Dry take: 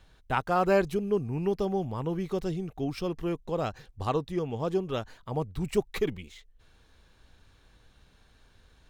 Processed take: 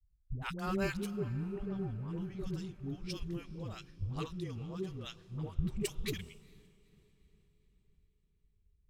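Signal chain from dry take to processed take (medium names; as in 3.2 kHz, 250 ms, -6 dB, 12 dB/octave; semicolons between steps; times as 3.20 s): phase dispersion highs, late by 120 ms, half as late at 410 Hz; 1.16–2.08 s: distance through air 290 m; level-controlled noise filter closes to 390 Hz, open at -27 dBFS; amplifier tone stack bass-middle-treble 6-0-2; on a send: echo that smears into a reverb 459 ms, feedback 66%, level -15 dB; on the sum: three bands expanded up and down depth 70%; trim +11 dB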